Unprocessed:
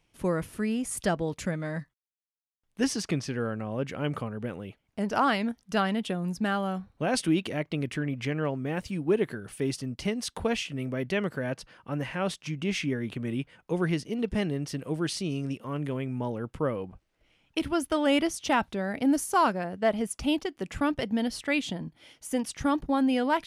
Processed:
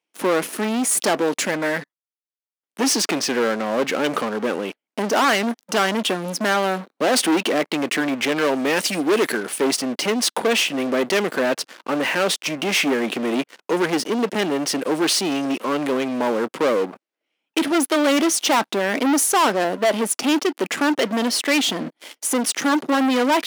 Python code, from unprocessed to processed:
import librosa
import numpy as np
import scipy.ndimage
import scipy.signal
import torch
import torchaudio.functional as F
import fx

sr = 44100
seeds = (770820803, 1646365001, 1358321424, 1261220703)

y = fx.high_shelf(x, sr, hz=2600.0, db=11.5, at=(8.36, 9.32))
y = fx.leveller(y, sr, passes=5)
y = scipy.signal.sosfilt(scipy.signal.butter(4, 260.0, 'highpass', fs=sr, output='sos'), y)